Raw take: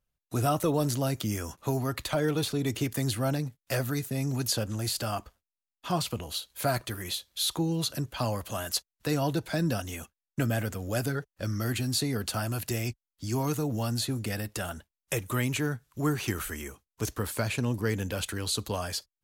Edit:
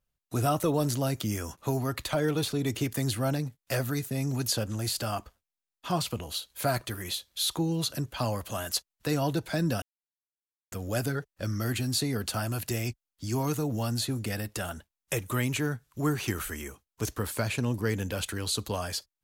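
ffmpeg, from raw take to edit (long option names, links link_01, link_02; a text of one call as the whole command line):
ffmpeg -i in.wav -filter_complex "[0:a]asplit=3[link_01][link_02][link_03];[link_01]atrim=end=9.82,asetpts=PTS-STARTPTS,afade=type=out:start_time=9.816:duration=0.004:curve=hsin[link_04];[link_02]atrim=start=9.82:end=10.72,asetpts=PTS-STARTPTS,volume=0[link_05];[link_03]atrim=start=10.72,asetpts=PTS-STARTPTS,afade=type=in:duration=0.004:curve=hsin[link_06];[link_04][link_05][link_06]concat=n=3:v=0:a=1" out.wav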